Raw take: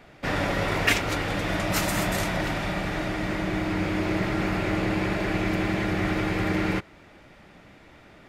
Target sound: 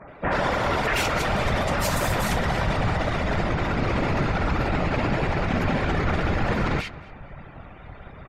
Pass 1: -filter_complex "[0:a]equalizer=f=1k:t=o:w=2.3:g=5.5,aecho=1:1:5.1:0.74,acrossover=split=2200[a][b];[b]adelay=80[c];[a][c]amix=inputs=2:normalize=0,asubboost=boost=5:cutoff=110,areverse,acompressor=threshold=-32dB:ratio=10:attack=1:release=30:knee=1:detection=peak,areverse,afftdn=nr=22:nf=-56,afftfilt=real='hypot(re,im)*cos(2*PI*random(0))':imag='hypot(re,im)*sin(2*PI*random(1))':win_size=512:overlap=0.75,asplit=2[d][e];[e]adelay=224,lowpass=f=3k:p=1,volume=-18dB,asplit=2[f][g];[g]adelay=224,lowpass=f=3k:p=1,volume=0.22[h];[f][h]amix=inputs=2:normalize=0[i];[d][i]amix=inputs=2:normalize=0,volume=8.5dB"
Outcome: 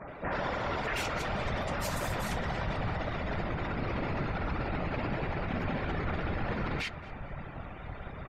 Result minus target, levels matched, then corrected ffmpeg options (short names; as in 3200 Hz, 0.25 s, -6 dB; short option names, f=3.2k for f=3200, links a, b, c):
compressor: peak gain reduction +9.5 dB
-filter_complex "[0:a]equalizer=f=1k:t=o:w=2.3:g=5.5,aecho=1:1:5.1:0.74,acrossover=split=2200[a][b];[b]adelay=80[c];[a][c]amix=inputs=2:normalize=0,asubboost=boost=5:cutoff=110,areverse,acompressor=threshold=-21.5dB:ratio=10:attack=1:release=30:knee=1:detection=peak,areverse,afftdn=nr=22:nf=-56,afftfilt=real='hypot(re,im)*cos(2*PI*random(0))':imag='hypot(re,im)*sin(2*PI*random(1))':win_size=512:overlap=0.75,asplit=2[d][e];[e]adelay=224,lowpass=f=3k:p=1,volume=-18dB,asplit=2[f][g];[g]adelay=224,lowpass=f=3k:p=1,volume=0.22[h];[f][h]amix=inputs=2:normalize=0[i];[d][i]amix=inputs=2:normalize=0,volume=8.5dB"